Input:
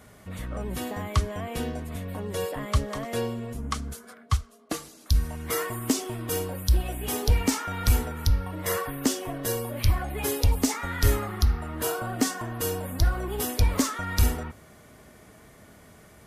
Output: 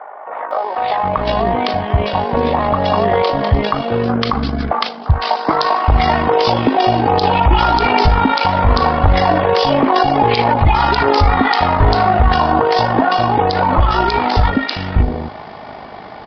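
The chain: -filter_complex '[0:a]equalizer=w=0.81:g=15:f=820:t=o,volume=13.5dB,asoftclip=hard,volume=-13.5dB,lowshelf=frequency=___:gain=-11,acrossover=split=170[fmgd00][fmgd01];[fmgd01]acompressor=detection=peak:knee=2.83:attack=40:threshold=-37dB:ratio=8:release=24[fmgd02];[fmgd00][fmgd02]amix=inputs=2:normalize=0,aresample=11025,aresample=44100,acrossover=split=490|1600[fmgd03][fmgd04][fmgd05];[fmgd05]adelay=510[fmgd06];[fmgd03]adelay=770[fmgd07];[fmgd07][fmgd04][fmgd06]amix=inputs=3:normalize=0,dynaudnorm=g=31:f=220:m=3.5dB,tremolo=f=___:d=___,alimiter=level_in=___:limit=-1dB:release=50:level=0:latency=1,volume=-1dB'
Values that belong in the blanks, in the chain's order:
170, 51, 0.519, 22dB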